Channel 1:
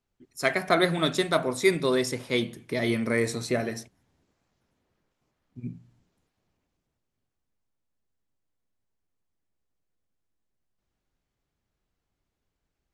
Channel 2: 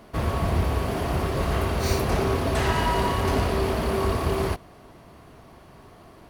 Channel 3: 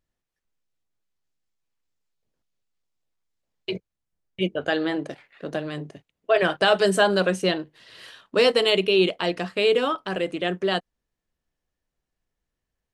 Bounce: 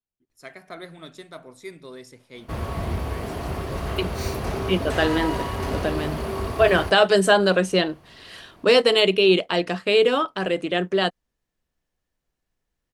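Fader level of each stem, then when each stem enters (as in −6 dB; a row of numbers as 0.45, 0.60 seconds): −16.5, −4.0, +2.5 decibels; 0.00, 2.35, 0.30 seconds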